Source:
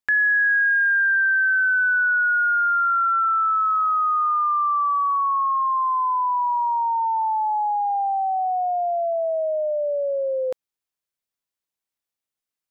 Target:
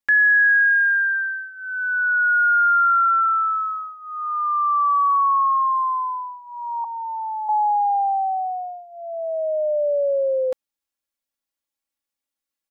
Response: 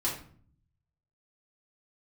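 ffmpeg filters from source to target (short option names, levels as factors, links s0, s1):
-filter_complex "[0:a]asettb=1/sr,asplit=3[s0][s1][s2];[s0]atrim=end=6.844[s3];[s1]atrim=start=6.84:end=7.49,asetpts=PTS-STARTPTS,afade=t=in:d=0.004:c=qsin,afade=t=out:st=0.646:d=0.004:c=qsin,highpass=1300[s4];[s2]atrim=start=7.486[s5];[s3][s4]acrossfade=d=0.004:c1=hsin:c2=qsin[s6];[s6][s5]acrossfade=d=0.004:c1=qsin:c2=hsin,aecho=1:1:3.6:0.89,volume=0.794"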